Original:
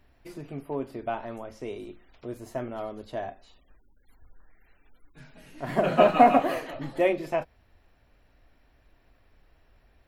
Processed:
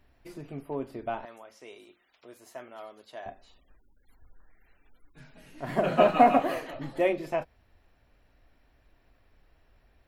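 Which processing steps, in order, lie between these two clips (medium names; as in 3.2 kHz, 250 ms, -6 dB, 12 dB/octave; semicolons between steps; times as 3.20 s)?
1.25–3.26 s: high-pass 1.3 kHz 6 dB/octave; trim -2 dB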